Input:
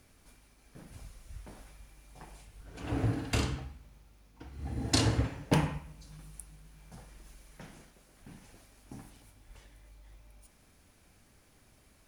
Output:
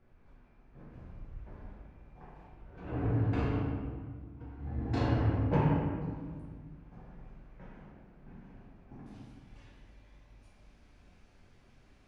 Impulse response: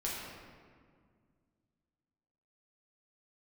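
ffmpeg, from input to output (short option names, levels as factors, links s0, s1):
-filter_complex "[0:a]asetnsamples=n=441:p=0,asendcmd='9.06 lowpass f 4800',lowpass=1600[s0];[1:a]atrim=start_sample=2205,asetrate=48510,aresample=44100[s1];[s0][s1]afir=irnorm=-1:irlink=0,volume=0.75"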